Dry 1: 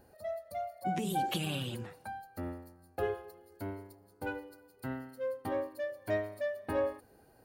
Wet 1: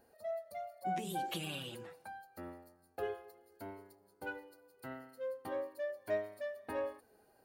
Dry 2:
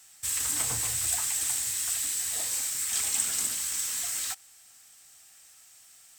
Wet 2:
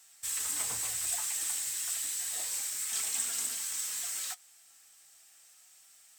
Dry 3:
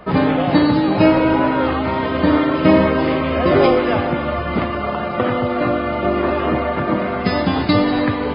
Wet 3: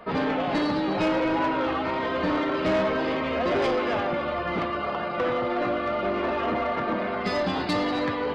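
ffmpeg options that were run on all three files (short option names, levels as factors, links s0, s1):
-af "bass=f=250:g=-8,treble=f=4000:g=0,flanger=delay=4.3:depth=1.8:regen=63:speed=0.3:shape=sinusoidal,asoftclip=type=tanh:threshold=0.106"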